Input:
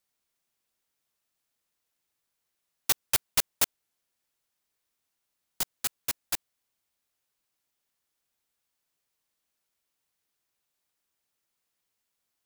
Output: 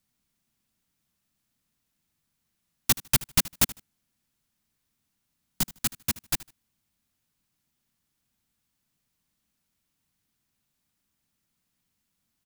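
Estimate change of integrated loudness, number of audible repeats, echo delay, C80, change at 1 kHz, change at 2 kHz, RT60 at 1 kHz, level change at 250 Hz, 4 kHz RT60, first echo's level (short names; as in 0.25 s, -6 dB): +2.5 dB, 2, 77 ms, none, +1.5 dB, +2.5 dB, none, +12.5 dB, none, -19.0 dB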